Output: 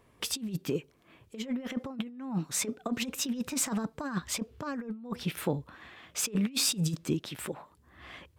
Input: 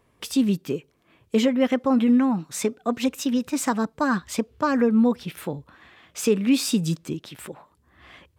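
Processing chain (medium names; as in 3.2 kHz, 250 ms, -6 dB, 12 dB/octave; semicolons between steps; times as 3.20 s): compressor with a negative ratio -26 dBFS, ratio -0.5; trim -5 dB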